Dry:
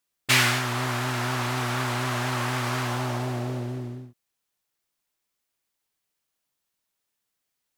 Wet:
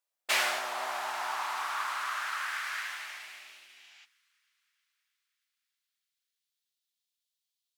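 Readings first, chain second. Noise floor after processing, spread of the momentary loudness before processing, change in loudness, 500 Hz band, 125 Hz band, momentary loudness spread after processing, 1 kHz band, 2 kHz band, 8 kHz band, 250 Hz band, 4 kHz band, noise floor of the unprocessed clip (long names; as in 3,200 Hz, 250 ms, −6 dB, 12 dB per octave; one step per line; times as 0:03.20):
below −85 dBFS, 12 LU, −6.5 dB, −11.0 dB, below −40 dB, 17 LU, −4.5 dB, −5.5 dB, −8.0 dB, below −25 dB, −7.5 dB, −81 dBFS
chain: high-pass filter sweep 600 Hz → 3,600 Hz, 0:00.55–0:04.39
high-pass filter 290 Hz 6 dB per octave
healed spectral selection 0:03.71–0:04.02, 610–7,900 Hz before
delay with a high-pass on its return 317 ms, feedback 65%, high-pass 2,500 Hz, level −23.5 dB
level −8 dB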